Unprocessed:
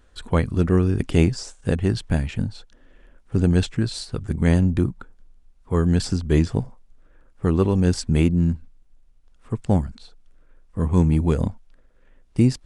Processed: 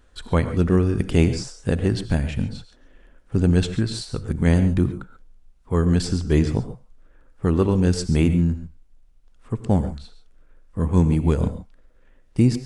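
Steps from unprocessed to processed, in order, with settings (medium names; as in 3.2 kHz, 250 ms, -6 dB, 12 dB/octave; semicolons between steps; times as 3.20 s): gated-style reverb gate 160 ms rising, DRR 10.5 dB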